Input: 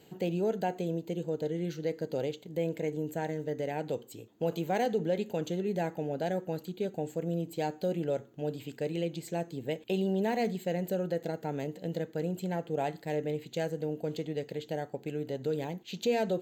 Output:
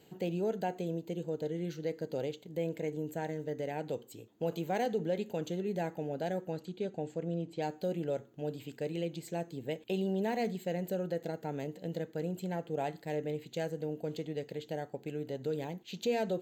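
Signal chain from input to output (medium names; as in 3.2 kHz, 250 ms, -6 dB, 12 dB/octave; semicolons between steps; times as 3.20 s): 6.51–7.61 s: low-pass 8.5 kHz -> 4.6 kHz 12 dB/octave; trim -3 dB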